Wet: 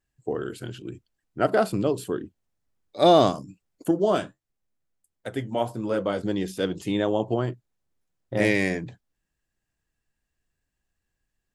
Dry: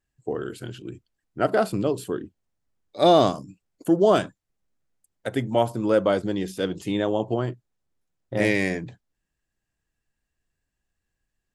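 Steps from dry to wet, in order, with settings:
0:03.91–0:06.21: flanger 1.5 Hz, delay 7.5 ms, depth 5.5 ms, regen −58%

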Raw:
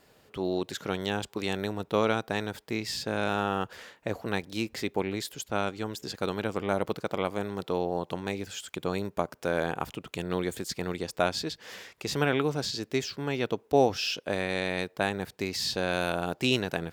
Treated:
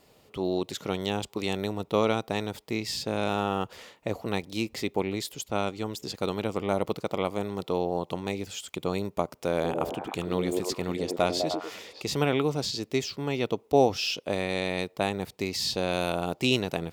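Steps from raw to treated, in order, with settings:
parametric band 1,600 Hz −11 dB 0.32 octaves
0:09.54–0:12.02: echo through a band-pass that steps 101 ms, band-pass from 320 Hz, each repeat 0.7 octaves, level −0.5 dB
level +1.5 dB

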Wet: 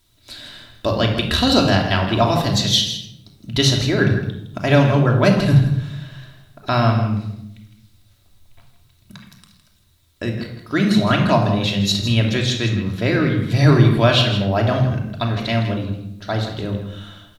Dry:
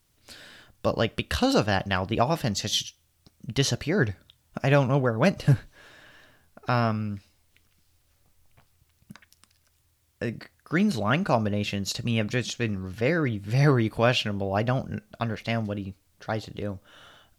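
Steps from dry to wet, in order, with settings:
parametric band 3,800 Hz +11.5 dB 0.28 octaves
single-tap delay 161 ms −11 dB
rectangular room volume 2,200 cubic metres, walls furnished, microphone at 2.9 metres
level +3.5 dB

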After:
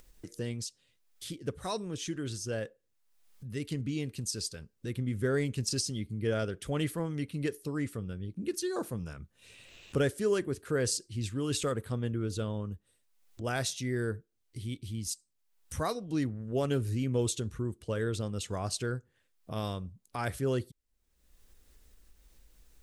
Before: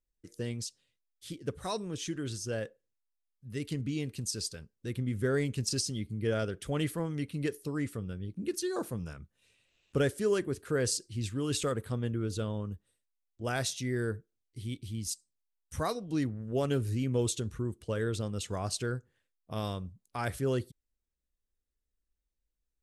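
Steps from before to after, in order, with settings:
upward compression, threshold −37 dBFS

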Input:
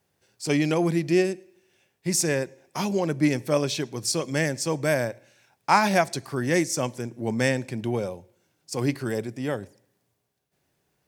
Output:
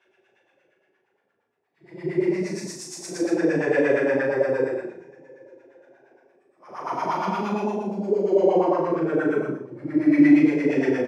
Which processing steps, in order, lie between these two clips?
extreme stretch with random phases 6.9×, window 0.10 s, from 0:01.76
auto-filter band-pass sine 8.6 Hz 320–1,500 Hz
ambience of single reflections 38 ms −4.5 dB, 72 ms −12 dB
level +8.5 dB

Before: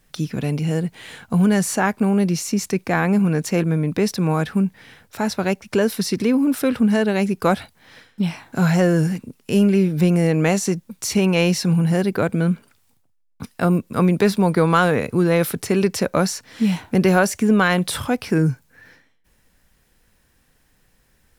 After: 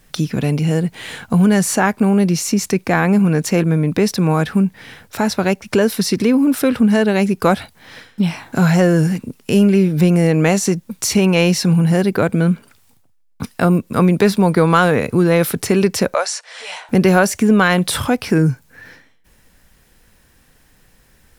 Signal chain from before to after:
in parallel at +0.5 dB: downward compressor, threshold −26 dBFS, peak gain reduction 14 dB
0:16.14–0:16.89: on the sum: elliptic band-pass filter 560–9,100 Hz, stop band 40 dB
level +1.5 dB

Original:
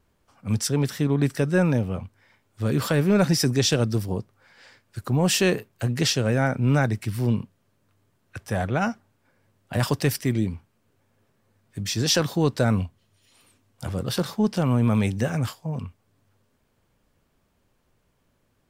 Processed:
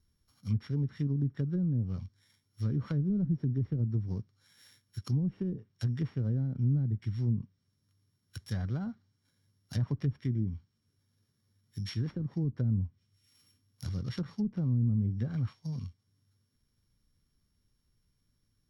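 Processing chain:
samples sorted by size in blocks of 8 samples
treble cut that deepens with the level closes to 330 Hz, closed at −16.5 dBFS
guitar amp tone stack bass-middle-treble 6-0-2
notch filter 2,600 Hz, Q 10
level +9 dB

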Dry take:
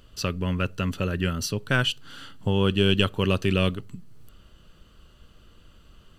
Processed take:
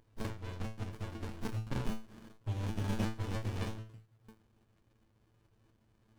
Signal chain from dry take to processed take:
tilt shelving filter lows −6 dB, about 820 Hz
tuned comb filter 110 Hz, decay 0.31 s, harmonics odd, mix 100%
windowed peak hold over 65 samples
level +5 dB

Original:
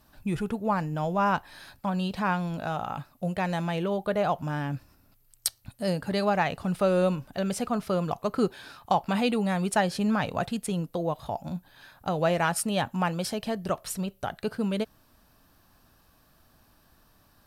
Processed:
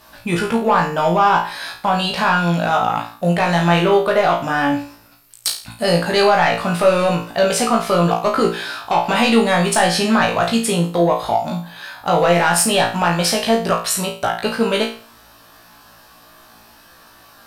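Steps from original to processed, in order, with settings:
mid-hump overdrive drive 16 dB, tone 6,700 Hz, clips at −7.5 dBFS
brickwall limiter −15 dBFS, peak gain reduction 6 dB
flutter between parallel walls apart 3 metres, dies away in 0.4 s
level +5.5 dB

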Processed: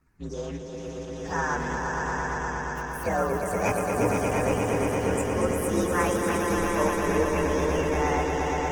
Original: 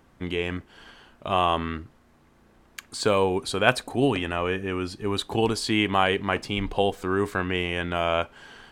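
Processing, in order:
partials spread apart or drawn together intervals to 127%
phaser swept by the level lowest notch 540 Hz, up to 4,400 Hz, full sweep at −29 dBFS
echo that builds up and dies away 117 ms, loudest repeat 5, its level −5.5 dB
level −2 dB
Opus 16 kbit/s 48,000 Hz

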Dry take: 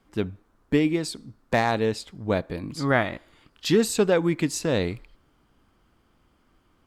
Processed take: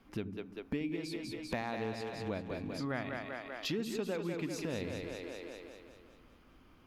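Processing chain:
thirty-one-band graphic EQ 250 Hz +5 dB, 2,500 Hz +5 dB, 8,000 Hz −10 dB
on a send: echo with a time of its own for lows and highs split 320 Hz, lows 80 ms, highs 196 ms, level −6.5 dB
on the sum: downward compressor 3 to 1, threshold −40 dBFS, peak gain reduction 19 dB

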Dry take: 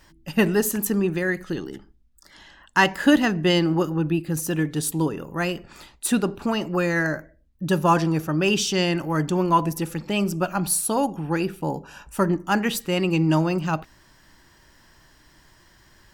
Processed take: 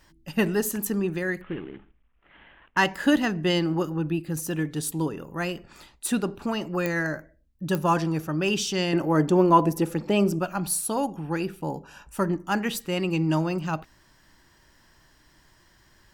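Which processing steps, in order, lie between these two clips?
0:01.41–0:02.77: variable-slope delta modulation 16 kbit/s
0:08.93–0:10.39: parametric band 440 Hz +9 dB 2.5 octaves
digital clicks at 0:06.86/0:07.75, −9 dBFS
level −4 dB

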